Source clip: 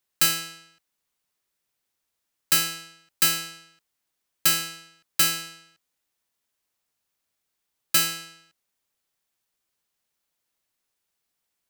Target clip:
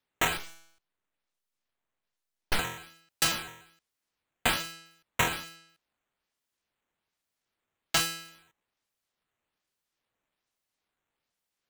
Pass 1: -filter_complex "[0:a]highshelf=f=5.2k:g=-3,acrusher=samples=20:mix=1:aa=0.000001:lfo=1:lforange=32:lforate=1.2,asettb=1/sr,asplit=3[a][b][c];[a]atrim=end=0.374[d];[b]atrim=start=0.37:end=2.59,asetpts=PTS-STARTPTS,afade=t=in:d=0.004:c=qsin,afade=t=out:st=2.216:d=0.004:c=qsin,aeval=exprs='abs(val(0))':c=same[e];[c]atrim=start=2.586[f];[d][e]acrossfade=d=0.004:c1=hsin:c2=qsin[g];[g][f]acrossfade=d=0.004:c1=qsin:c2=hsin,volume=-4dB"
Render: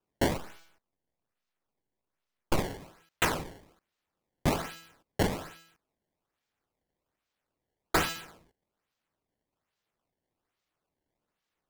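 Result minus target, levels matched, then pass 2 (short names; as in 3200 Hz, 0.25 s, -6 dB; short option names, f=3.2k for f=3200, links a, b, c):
decimation with a swept rate: distortion +12 dB
-filter_complex "[0:a]highshelf=f=5.2k:g=-3,acrusher=samples=5:mix=1:aa=0.000001:lfo=1:lforange=8:lforate=1.2,asettb=1/sr,asplit=3[a][b][c];[a]atrim=end=0.374[d];[b]atrim=start=0.37:end=2.59,asetpts=PTS-STARTPTS,afade=t=in:d=0.004:c=qsin,afade=t=out:st=2.216:d=0.004:c=qsin,aeval=exprs='abs(val(0))':c=same[e];[c]atrim=start=2.586[f];[d][e]acrossfade=d=0.004:c1=hsin:c2=qsin[g];[g][f]acrossfade=d=0.004:c1=qsin:c2=hsin,volume=-4dB"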